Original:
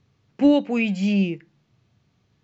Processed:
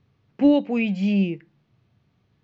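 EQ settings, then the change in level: dynamic bell 1.4 kHz, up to -5 dB, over -44 dBFS, Q 2; distance through air 140 m; 0.0 dB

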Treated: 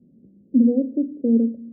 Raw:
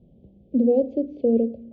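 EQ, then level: ladder band-pass 300 Hz, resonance 45%; tilt EQ -4.5 dB/octave; +2.0 dB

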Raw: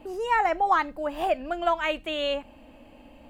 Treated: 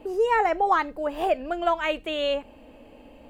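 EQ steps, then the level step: peaking EQ 440 Hz +10 dB 0.42 oct; 0.0 dB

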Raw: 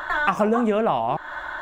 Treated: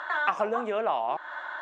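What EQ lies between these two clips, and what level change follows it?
band-pass 460–5300 Hz; -4.5 dB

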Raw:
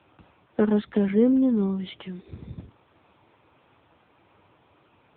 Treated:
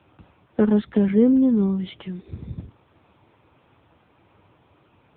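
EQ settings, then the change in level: bass shelf 250 Hz +7 dB; 0.0 dB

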